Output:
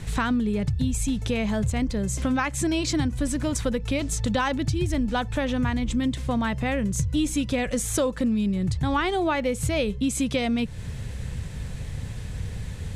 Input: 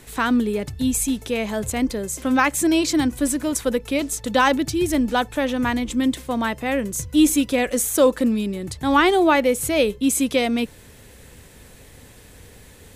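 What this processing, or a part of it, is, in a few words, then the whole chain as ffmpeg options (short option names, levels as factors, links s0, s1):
jukebox: -af "lowpass=7500,lowshelf=f=210:t=q:w=1.5:g=11,acompressor=threshold=0.0447:ratio=4,volume=1.58"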